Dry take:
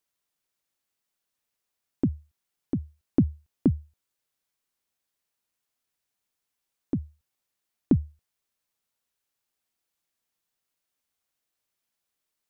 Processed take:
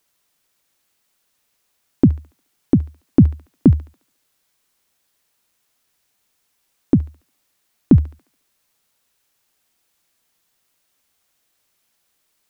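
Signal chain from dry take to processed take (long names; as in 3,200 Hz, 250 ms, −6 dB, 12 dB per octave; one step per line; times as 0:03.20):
delay with a high-pass on its return 71 ms, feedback 46%, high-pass 1,400 Hz, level −9.5 dB
boost into a limiter +15 dB
level −1 dB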